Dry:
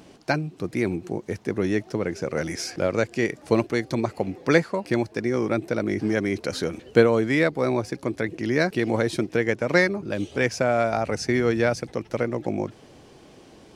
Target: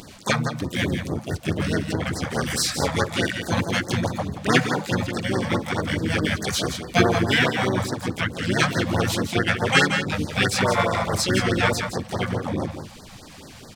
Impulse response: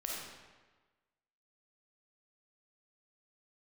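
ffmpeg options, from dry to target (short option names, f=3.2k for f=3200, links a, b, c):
-filter_complex "[0:a]bandreject=f=71.07:t=h:w=4,bandreject=f=142.14:t=h:w=4,bandreject=f=213.21:t=h:w=4,bandreject=f=284.28:t=h:w=4,bandreject=f=355.35:t=h:w=4,bandreject=f=426.42:t=h:w=4,bandreject=f=497.49:t=h:w=4,bandreject=f=568.56:t=h:w=4,bandreject=f=639.63:t=h:w=4,bandreject=f=710.7:t=h:w=4,bandreject=f=781.77:t=h:w=4,bandreject=f=852.84:t=h:w=4,bandreject=f=923.91:t=h:w=4,bandreject=f=994.98:t=h:w=4,bandreject=f=1.06605k:t=h:w=4,bandreject=f=1.13712k:t=h:w=4,bandreject=f=1.20819k:t=h:w=4,bandreject=f=1.27926k:t=h:w=4,bandreject=f=1.35033k:t=h:w=4,bandreject=f=1.4214k:t=h:w=4,bandreject=f=1.49247k:t=h:w=4,asplit=2[a][b];[b]acompressor=threshold=-37dB:ratio=8,volume=-2dB[c];[a][c]amix=inputs=2:normalize=0,equalizer=f=390:w=0.64:g=-10,aecho=1:1:167:0.398,asplit=3[d][e][f];[e]asetrate=35002,aresample=44100,atempo=1.25992,volume=-1dB[g];[f]asetrate=66075,aresample=44100,atempo=0.66742,volume=-2dB[h];[d][g][h]amix=inputs=3:normalize=0,afftfilt=real='re*(1-between(b*sr/1024,310*pow(2900/310,0.5+0.5*sin(2*PI*4.7*pts/sr))/1.41,310*pow(2900/310,0.5+0.5*sin(2*PI*4.7*pts/sr))*1.41))':imag='im*(1-between(b*sr/1024,310*pow(2900/310,0.5+0.5*sin(2*PI*4.7*pts/sr))/1.41,310*pow(2900/310,0.5+0.5*sin(2*PI*4.7*pts/sr))*1.41))':win_size=1024:overlap=0.75,volume=3dB"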